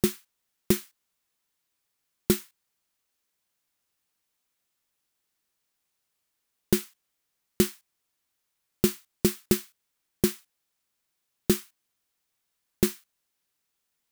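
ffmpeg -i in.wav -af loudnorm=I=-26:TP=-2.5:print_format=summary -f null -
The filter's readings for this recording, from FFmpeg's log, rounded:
Input Integrated:    -28.6 LUFS
Input True Peak:      -5.4 dBTP
Input LRA:             5.9 LU
Input Threshold:     -39.8 LUFS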